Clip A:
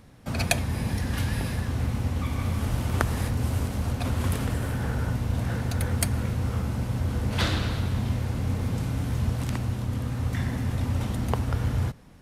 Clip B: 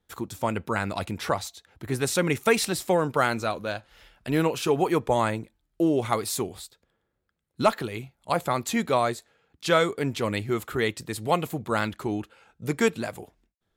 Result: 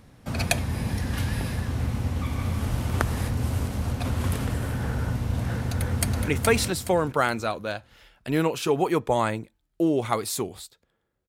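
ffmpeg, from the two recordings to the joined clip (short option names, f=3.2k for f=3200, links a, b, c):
-filter_complex "[0:a]apad=whole_dur=11.28,atrim=end=11.28,atrim=end=6.282[a];[1:a]atrim=start=2.278:end=7.28[b];[a][b]acrossfade=d=0.004:c1=hsin:c2=hsin,asplit=2[c][d];[d]afade=t=in:st=5.65:d=0.01,afade=t=out:st=6.28:d=0.01,aecho=0:1:420|840|1260|1680:0.749894|0.224968|0.0674905|0.0202471[e];[c][e]amix=inputs=2:normalize=0"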